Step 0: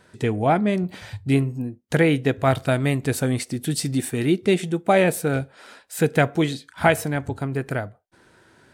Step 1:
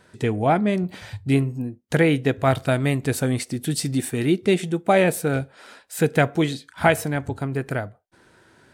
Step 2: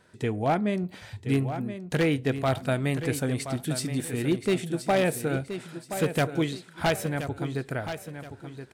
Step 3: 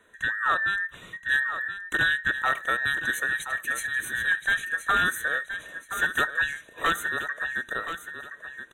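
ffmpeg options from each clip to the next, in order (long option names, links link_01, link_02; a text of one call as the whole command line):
ffmpeg -i in.wav -af anull out.wav
ffmpeg -i in.wav -af "aeval=exprs='0.282*(abs(mod(val(0)/0.282+3,4)-2)-1)':channel_layout=same,aecho=1:1:1024|2048|3072|4096:0.316|0.101|0.0324|0.0104,volume=-5.5dB" out.wav
ffmpeg -i in.wav -af "afftfilt=real='real(if(between(b,1,1012),(2*floor((b-1)/92)+1)*92-b,b),0)':imag='imag(if(between(b,1,1012),(2*floor((b-1)/92)+1)*92-b,b),0)*if(between(b,1,1012),-1,1)':win_size=2048:overlap=0.75,asuperstop=centerf=5000:order=20:qfactor=2.7" out.wav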